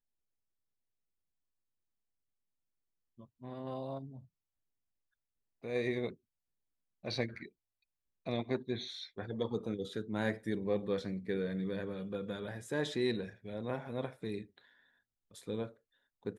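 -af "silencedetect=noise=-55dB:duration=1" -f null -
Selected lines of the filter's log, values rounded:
silence_start: 0.00
silence_end: 3.19 | silence_duration: 3.19
silence_start: 4.25
silence_end: 5.63 | silence_duration: 1.38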